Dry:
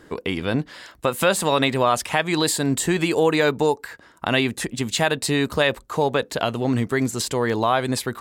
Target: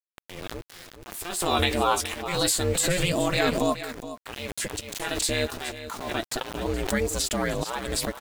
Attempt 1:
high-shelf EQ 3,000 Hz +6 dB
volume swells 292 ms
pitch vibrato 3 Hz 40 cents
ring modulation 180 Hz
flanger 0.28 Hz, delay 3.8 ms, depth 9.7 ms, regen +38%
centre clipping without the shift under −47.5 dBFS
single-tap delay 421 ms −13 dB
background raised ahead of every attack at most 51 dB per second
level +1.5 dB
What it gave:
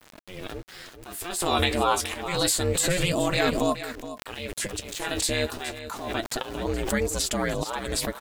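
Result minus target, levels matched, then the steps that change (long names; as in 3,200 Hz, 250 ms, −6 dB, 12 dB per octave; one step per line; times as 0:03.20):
centre clipping without the shift: distortion −8 dB
change: centre clipping without the shift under −40 dBFS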